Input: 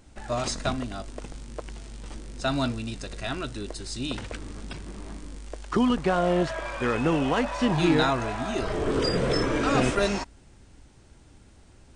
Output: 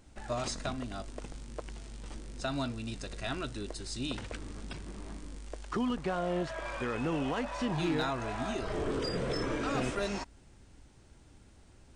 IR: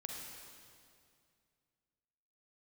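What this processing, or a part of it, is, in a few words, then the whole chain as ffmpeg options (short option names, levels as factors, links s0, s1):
clipper into limiter: -af "asoftclip=type=hard:threshold=0.188,alimiter=limit=0.106:level=0:latency=1:release=285,volume=0.596"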